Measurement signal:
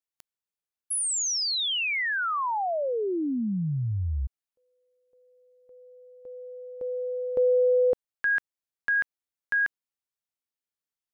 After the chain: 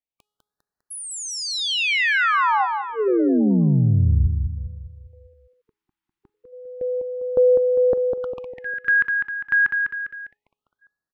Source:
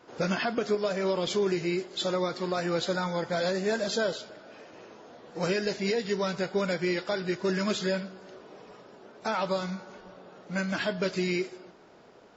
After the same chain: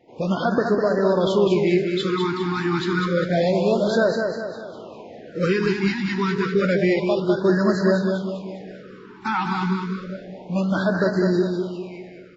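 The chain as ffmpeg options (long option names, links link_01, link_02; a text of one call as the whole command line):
ffmpeg -i in.wav -filter_complex "[0:a]bass=frequency=250:gain=2,treble=frequency=4000:gain=-14,bandreject=frequency=418.1:width_type=h:width=4,bandreject=frequency=836.2:width_type=h:width=4,bandreject=frequency=1254.3:width_type=h:width=4,bandreject=frequency=1672.4:width_type=h:width=4,bandreject=frequency=2090.5:width_type=h:width=4,bandreject=frequency=2508.6:width_type=h:width=4,bandreject=frequency=2926.7:width_type=h:width=4,bandreject=frequency=3344.8:width_type=h:width=4,bandreject=frequency=3762.9:width_type=h:width=4,bandreject=frequency=4181:width_type=h:width=4,bandreject=frequency=4599.1:width_type=h:width=4,bandreject=frequency=5017.2:width_type=h:width=4,bandreject=frequency=5435.3:width_type=h:width=4,bandreject=frequency=5853.4:width_type=h:width=4,bandreject=frequency=6271.5:width_type=h:width=4,bandreject=frequency=6689.6:width_type=h:width=4,bandreject=frequency=7107.7:width_type=h:width=4,bandreject=frequency=7525.8:width_type=h:width=4,bandreject=frequency=7943.9:width_type=h:width=4,bandreject=frequency=8362:width_type=h:width=4,bandreject=frequency=8780.1:width_type=h:width=4,bandreject=frequency=9198.2:width_type=h:width=4,bandreject=frequency=9616.3:width_type=h:width=4,bandreject=frequency=10034.4:width_type=h:width=4,bandreject=frequency=10452.5:width_type=h:width=4,bandreject=frequency=10870.6:width_type=h:width=4,bandreject=frequency=11288.7:width_type=h:width=4,bandreject=frequency=11706.8:width_type=h:width=4,bandreject=frequency=12124.9:width_type=h:width=4,bandreject=frequency=12543:width_type=h:width=4,bandreject=frequency=12961.1:width_type=h:width=4,bandreject=frequency=13379.2:width_type=h:width=4,bandreject=frequency=13797.3:width_type=h:width=4,bandreject=frequency=14215.4:width_type=h:width=4,dynaudnorm=framelen=110:gausssize=5:maxgain=8dB,asplit=2[link_01][link_02];[link_02]aecho=0:1:201|402|603|804|1005|1206:0.562|0.264|0.124|0.0584|0.0274|0.0129[link_03];[link_01][link_03]amix=inputs=2:normalize=0,afftfilt=real='re*(1-between(b*sr/1024,530*pow(2800/530,0.5+0.5*sin(2*PI*0.29*pts/sr))/1.41,530*pow(2800/530,0.5+0.5*sin(2*PI*0.29*pts/sr))*1.41))':imag='im*(1-between(b*sr/1024,530*pow(2800/530,0.5+0.5*sin(2*PI*0.29*pts/sr))/1.41,530*pow(2800/530,0.5+0.5*sin(2*PI*0.29*pts/sr))*1.41))':win_size=1024:overlap=0.75" out.wav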